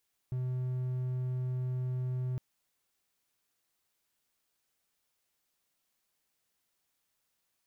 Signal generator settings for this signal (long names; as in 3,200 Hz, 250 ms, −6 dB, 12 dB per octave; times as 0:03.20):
tone triangle 127 Hz −29 dBFS 2.06 s